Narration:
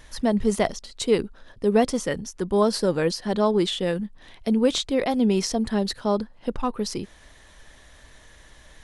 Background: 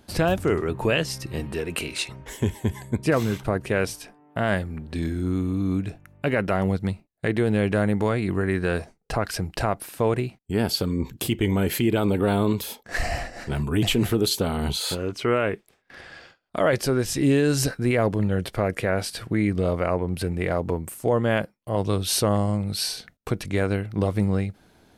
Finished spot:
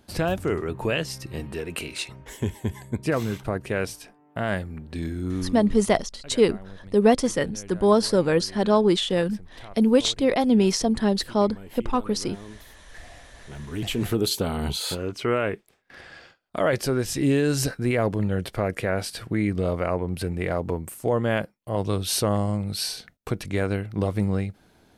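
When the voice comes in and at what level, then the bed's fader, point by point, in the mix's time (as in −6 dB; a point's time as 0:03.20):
5.30 s, +2.0 dB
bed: 0:05.42 −3 dB
0:05.83 −20.5 dB
0:13.13 −20.5 dB
0:14.15 −1.5 dB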